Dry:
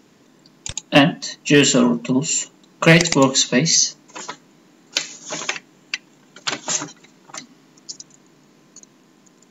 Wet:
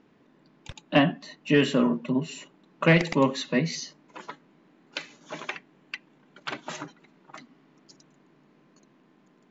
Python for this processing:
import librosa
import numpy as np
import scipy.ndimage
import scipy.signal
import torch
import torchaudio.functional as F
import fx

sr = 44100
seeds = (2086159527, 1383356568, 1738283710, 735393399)

y = scipy.signal.sosfilt(scipy.signal.butter(2, 2600.0, 'lowpass', fs=sr, output='sos'), x)
y = F.gain(torch.from_numpy(y), -7.0).numpy()